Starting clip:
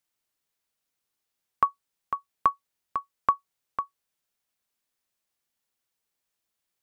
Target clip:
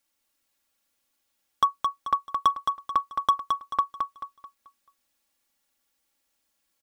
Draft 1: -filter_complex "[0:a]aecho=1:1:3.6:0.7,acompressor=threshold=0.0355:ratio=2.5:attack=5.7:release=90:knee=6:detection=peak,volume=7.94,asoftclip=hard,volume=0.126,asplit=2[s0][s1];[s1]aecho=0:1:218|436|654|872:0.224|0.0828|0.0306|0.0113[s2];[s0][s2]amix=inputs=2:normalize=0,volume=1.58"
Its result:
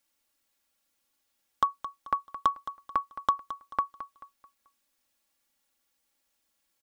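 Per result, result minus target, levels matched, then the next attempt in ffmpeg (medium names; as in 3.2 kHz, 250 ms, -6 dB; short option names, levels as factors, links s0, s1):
compression: peak gain reduction +5.5 dB; echo-to-direct -8 dB
-filter_complex "[0:a]aecho=1:1:3.6:0.7,acompressor=threshold=0.106:ratio=2.5:attack=5.7:release=90:knee=6:detection=peak,volume=7.94,asoftclip=hard,volume=0.126,asplit=2[s0][s1];[s1]aecho=0:1:218|436|654|872:0.224|0.0828|0.0306|0.0113[s2];[s0][s2]amix=inputs=2:normalize=0,volume=1.58"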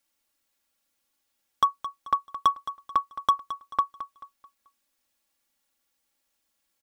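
echo-to-direct -8 dB
-filter_complex "[0:a]aecho=1:1:3.6:0.7,acompressor=threshold=0.106:ratio=2.5:attack=5.7:release=90:knee=6:detection=peak,volume=7.94,asoftclip=hard,volume=0.126,asplit=2[s0][s1];[s1]aecho=0:1:218|436|654|872|1090:0.562|0.208|0.077|0.0285|0.0105[s2];[s0][s2]amix=inputs=2:normalize=0,volume=1.58"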